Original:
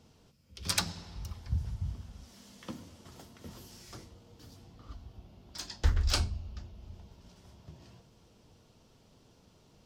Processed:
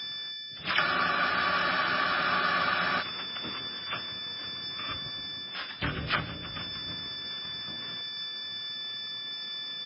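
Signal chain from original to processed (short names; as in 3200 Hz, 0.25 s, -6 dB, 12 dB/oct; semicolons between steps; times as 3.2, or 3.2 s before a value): in parallel at -11.5 dB: soft clip -24.5 dBFS, distortion -11 dB; on the sum: AM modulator 220 Hz, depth 50%; band shelf 1400 Hz +16 dB 1 oct; whine 3500 Hz -40 dBFS; on a send: frequency-shifting echo 0.154 s, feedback 63%, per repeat -35 Hz, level -19.5 dB; on the sum: harmoniser -12 st -12 dB, +7 st -8 dB, +12 st -3 dB; vocal rider within 5 dB 0.5 s; harmoniser +5 st -9 dB; HPF 130 Hz 12 dB/oct; spectral freeze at 0.82, 2.18 s; MP3 16 kbps 12000 Hz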